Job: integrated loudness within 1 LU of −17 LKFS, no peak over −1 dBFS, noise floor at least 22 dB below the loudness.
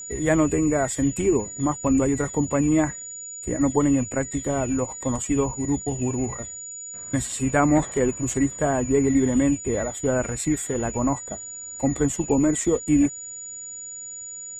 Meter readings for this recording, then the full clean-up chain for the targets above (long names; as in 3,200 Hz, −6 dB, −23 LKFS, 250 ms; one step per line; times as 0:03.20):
interfering tone 6,900 Hz; level of the tone −34 dBFS; integrated loudness −24.0 LKFS; sample peak −6.5 dBFS; target loudness −17.0 LKFS
→ notch filter 6,900 Hz, Q 30
level +7 dB
brickwall limiter −1 dBFS